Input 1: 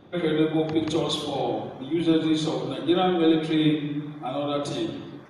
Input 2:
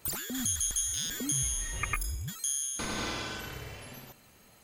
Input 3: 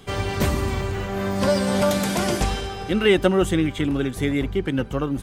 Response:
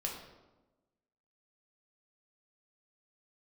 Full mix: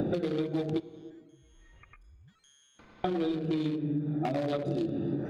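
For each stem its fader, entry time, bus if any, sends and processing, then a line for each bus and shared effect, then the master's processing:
+2.0 dB, 0.00 s, muted 0.8–3.04, send -14 dB, Wiener smoothing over 41 samples; three-band squash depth 100%
1.28 s -23 dB -> 1.61 s -13.5 dB, 0.00 s, send -22 dB, LPF 2500 Hz 12 dB/oct; compressor 2.5:1, threshold -44 dBFS, peak gain reduction 11 dB
off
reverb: on, RT60 1.1 s, pre-delay 5 ms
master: compressor, threshold -28 dBFS, peak gain reduction 12.5 dB

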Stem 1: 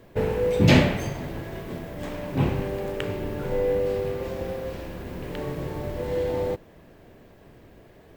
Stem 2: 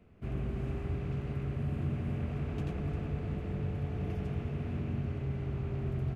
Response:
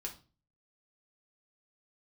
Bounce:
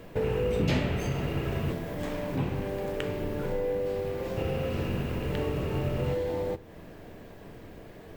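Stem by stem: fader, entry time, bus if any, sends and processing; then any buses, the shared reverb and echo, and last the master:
+1.5 dB, 0.00 s, send -5 dB, compressor 2.5:1, threshold -36 dBFS, peak gain reduction 16 dB
+1.5 dB, 0.00 s, muted 1.71–4.37, no send, bell 2700 Hz +9 dB; small resonant body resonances 480/1300/2800 Hz, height 12 dB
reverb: on, RT60 0.35 s, pre-delay 4 ms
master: dry

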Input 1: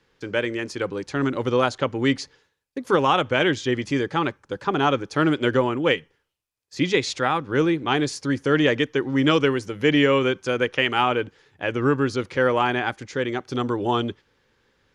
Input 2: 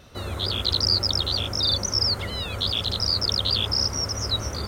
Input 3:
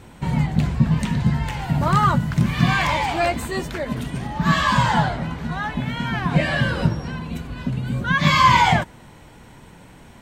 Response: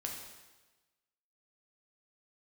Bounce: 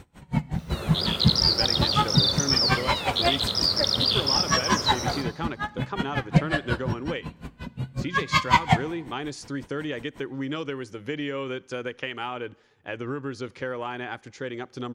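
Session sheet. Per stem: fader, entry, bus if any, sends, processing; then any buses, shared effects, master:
-7.0 dB, 1.25 s, send -23 dB, compressor, threshold -21 dBFS, peak gain reduction 7.5 dB
-3.0 dB, 0.55 s, send -4.5 dB, HPF 150 Hz 12 dB/oct; bit-crush 10-bit
-1.0 dB, 0.00 s, send -13.5 dB, dB-linear tremolo 5.5 Hz, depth 38 dB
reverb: on, RT60 1.2 s, pre-delay 5 ms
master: dry

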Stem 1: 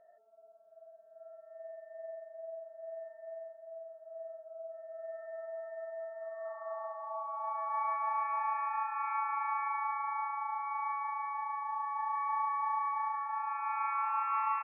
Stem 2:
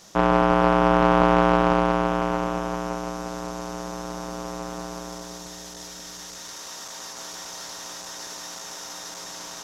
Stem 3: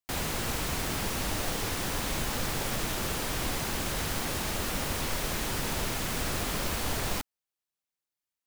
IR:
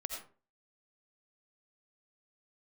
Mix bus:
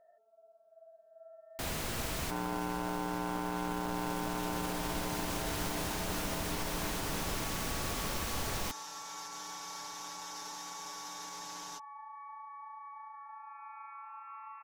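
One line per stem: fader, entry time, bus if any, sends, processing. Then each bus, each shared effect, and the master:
-2.0 dB, 0.00 s, no send, compressor 4:1, threshold -46 dBFS, peak gain reduction 15 dB
-11.0 dB, 2.15 s, no send, comb 6.7 ms, depth 86%
-5.0 dB, 1.50 s, no send, dry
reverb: off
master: limiter -24.5 dBFS, peak gain reduction 12 dB

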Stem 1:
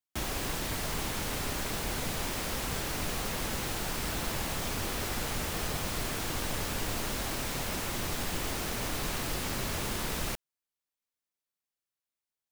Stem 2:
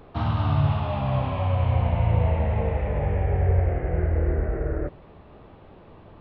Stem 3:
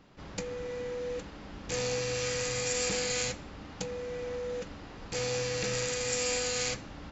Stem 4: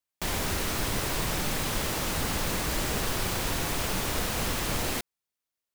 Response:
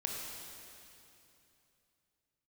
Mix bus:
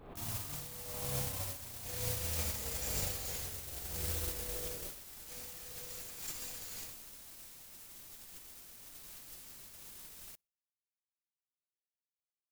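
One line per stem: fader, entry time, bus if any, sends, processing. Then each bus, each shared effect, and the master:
+3.0 dB, 0.00 s, no send, echo send -21.5 dB, pre-emphasis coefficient 0.8
-7.0 dB, 0.00 s, no send, echo send -5.5 dB, compressor 6:1, threshold -31 dBFS, peak gain reduction 14.5 dB
-6.5 dB, 0.15 s, no send, echo send -7 dB, reverb removal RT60 0.81 s; high shelf 6800 Hz +11 dB; cascading flanger falling 0.81 Hz
off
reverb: off
echo: feedback echo 61 ms, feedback 45%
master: gate -31 dBFS, range -32 dB; backwards sustainer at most 70 dB/s

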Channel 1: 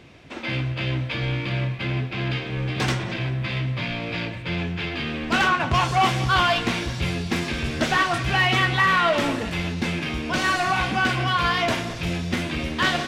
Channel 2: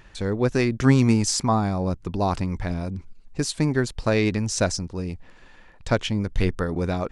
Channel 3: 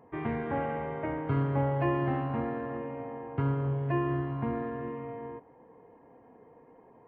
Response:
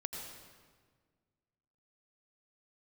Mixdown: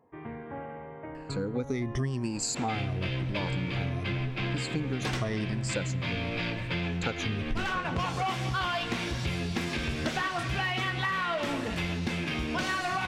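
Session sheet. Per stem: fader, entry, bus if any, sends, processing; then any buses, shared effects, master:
+0.5 dB, 2.25 s, no send, dry
-4.0 dB, 1.15 s, send -23 dB, moving spectral ripple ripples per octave 1.3, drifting -0.9 Hz, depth 18 dB; rotary speaker horn 0.65 Hz
-8.0 dB, 0.00 s, no send, dry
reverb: on, RT60 1.6 s, pre-delay 79 ms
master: compressor 6:1, threshold -28 dBFS, peak gain reduction 15 dB

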